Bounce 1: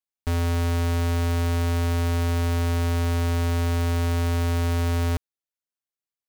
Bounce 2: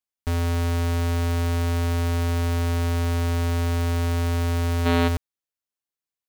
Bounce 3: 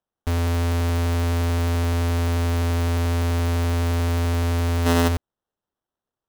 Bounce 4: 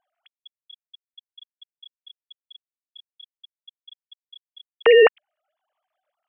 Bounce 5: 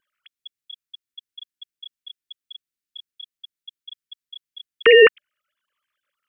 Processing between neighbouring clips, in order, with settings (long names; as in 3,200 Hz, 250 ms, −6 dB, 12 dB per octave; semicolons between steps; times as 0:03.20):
gain on a spectral selection 0:04.86–0:05.08, 210–4,500 Hz +9 dB
sample-rate reduction 2,300 Hz, jitter 0%; level +1.5 dB
three sine waves on the formant tracks; level −4 dB
Butterworth band-reject 740 Hz, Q 0.83; level +6.5 dB